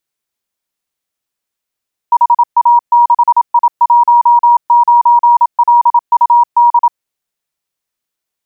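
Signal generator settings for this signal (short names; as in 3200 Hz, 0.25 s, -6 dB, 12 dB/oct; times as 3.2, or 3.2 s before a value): Morse "HA6I19LUD" 27 wpm 953 Hz -3.5 dBFS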